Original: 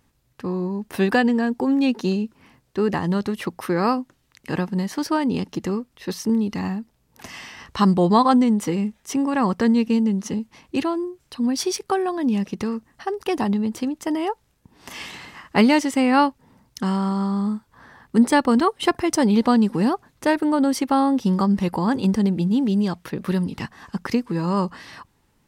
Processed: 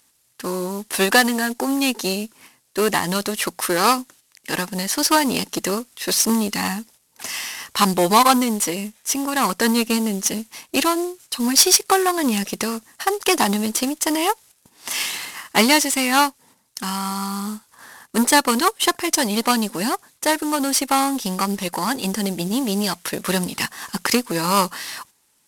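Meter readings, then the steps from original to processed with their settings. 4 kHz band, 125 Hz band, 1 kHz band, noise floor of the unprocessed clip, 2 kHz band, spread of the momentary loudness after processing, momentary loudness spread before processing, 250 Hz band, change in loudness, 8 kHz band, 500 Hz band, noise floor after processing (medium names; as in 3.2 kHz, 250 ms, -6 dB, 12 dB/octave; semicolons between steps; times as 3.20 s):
+11.5 dB, -4.5 dB, +3.5 dB, -65 dBFS, +7.0 dB, 12 LU, 14 LU, -3.0 dB, +1.5 dB, +15.5 dB, +1.0 dB, -63 dBFS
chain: CVSD coder 64 kbps; gate -49 dBFS, range -7 dB; gain riding 2 s; Chebyshev shaper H 8 -24 dB, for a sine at -4 dBFS; RIAA curve recording; trim +3.5 dB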